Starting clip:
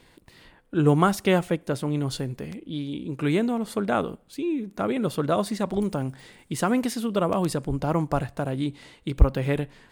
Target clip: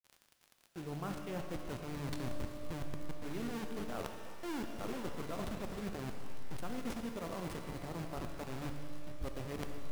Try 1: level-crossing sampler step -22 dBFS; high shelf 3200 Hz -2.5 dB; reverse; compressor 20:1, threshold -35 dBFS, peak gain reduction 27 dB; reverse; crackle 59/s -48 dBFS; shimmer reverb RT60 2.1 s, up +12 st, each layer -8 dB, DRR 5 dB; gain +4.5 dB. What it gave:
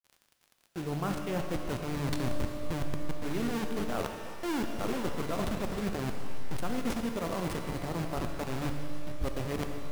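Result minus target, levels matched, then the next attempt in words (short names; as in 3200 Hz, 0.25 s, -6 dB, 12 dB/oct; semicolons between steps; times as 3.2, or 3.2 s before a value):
compressor: peak gain reduction -8 dB
level-crossing sampler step -22 dBFS; high shelf 3200 Hz -2.5 dB; reverse; compressor 20:1, threshold -43.5 dBFS, peak gain reduction 35 dB; reverse; crackle 59/s -48 dBFS; shimmer reverb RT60 2.1 s, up +12 st, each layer -8 dB, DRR 5 dB; gain +4.5 dB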